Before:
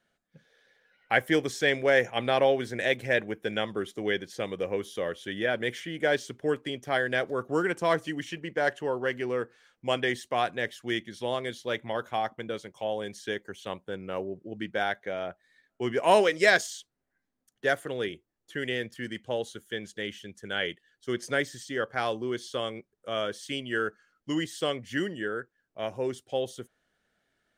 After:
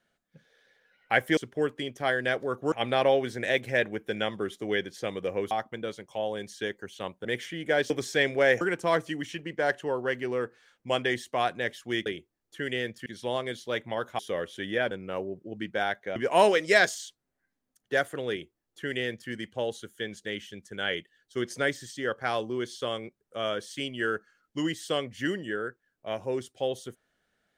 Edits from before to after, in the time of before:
1.37–2.08 s: swap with 6.24–7.59 s
4.87–5.59 s: swap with 12.17–13.91 s
15.16–15.88 s: delete
18.02–19.02 s: copy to 11.04 s

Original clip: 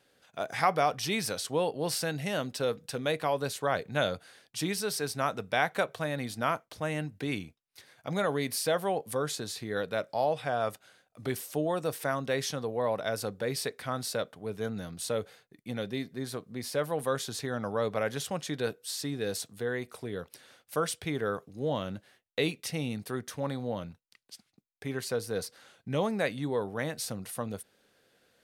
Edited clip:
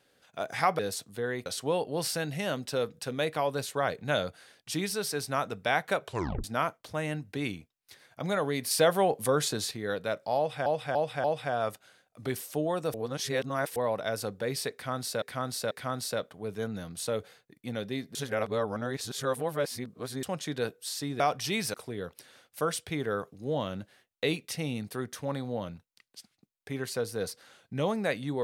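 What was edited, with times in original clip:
0.79–1.33 s: swap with 19.22–19.89 s
5.93 s: tape stop 0.38 s
8.58–9.58 s: gain +5 dB
10.24–10.53 s: loop, 4 plays
11.94–12.76 s: reverse
13.73–14.22 s: loop, 3 plays
16.17–18.25 s: reverse

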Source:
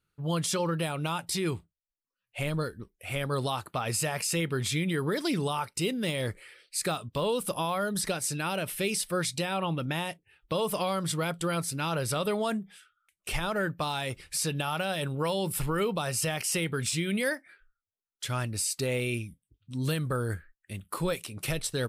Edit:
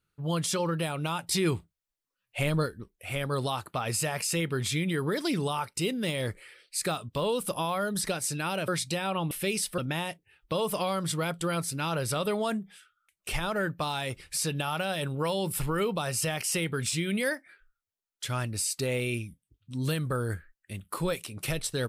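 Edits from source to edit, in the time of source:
1.31–2.66 s: gain +3.5 dB
8.68–9.15 s: move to 9.78 s

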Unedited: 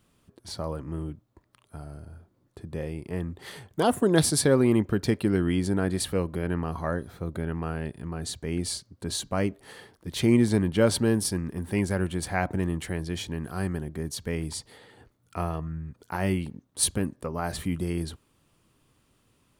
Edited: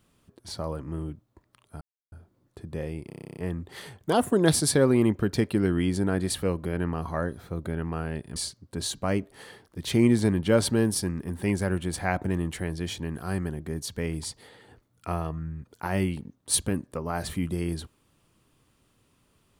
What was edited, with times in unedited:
1.81–2.12 s: mute
3.07 s: stutter 0.03 s, 11 plays
8.06–8.65 s: delete

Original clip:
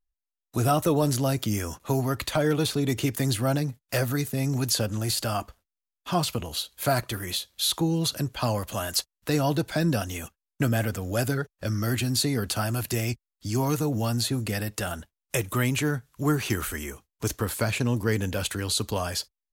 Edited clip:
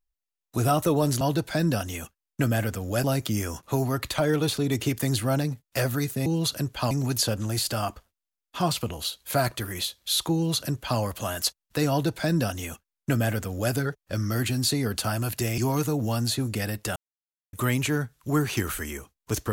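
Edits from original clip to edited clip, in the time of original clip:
7.86–8.51 s: copy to 4.43 s
9.42–11.25 s: copy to 1.21 s
13.10–13.51 s: delete
14.89–15.46 s: mute

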